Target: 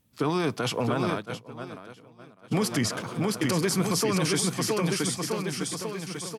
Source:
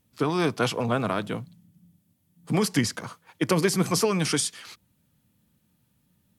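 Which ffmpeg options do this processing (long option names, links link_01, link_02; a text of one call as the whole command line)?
ffmpeg -i in.wav -filter_complex "[0:a]asplit=2[link_01][link_02];[link_02]aecho=0:1:670|1273|1816|2304|2744:0.631|0.398|0.251|0.158|0.1[link_03];[link_01][link_03]amix=inputs=2:normalize=0,asplit=3[link_04][link_05][link_06];[link_04]afade=type=out:start_time=1.14:duration=0.02[link_07];[link_05]agate=range=-33dB:threshold=-18dB:ratio=3:detection=peak,afade=type=in:start_time=1.14:duration=0.02,afade=type=out:start_time=2.51:duration=0.02[link_08];[link_06]afade=type=in:start_time=2.51:duration=0.02[link_09];[link_07][link_08][link_09]amix=inputs=3:normalize=0,alimiter=limit=-16dB:level=0:latency=1:release=34" out.wav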